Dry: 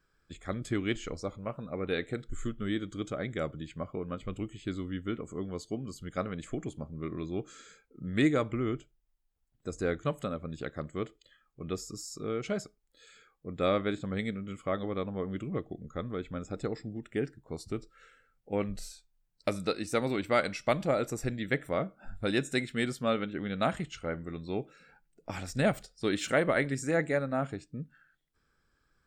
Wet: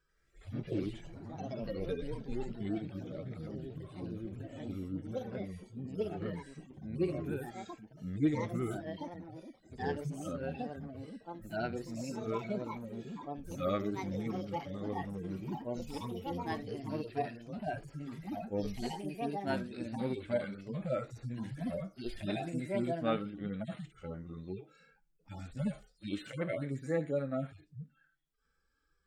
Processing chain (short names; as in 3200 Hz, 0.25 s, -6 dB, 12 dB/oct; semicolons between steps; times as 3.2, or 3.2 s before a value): median-filter separation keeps harmonic; echoes that change speed 87 ms, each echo +3 st, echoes 3; gain -3 dB